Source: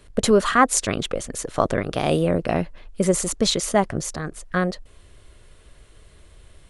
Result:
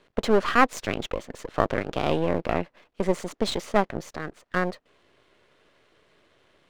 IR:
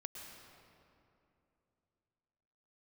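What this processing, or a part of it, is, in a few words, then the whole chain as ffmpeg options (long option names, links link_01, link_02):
crystal radio: -af "highpass=250,lowpass=3400,aeval=exprs='if(lt(val(0),0),0.251*val(0),val(0))':channel_layout=same"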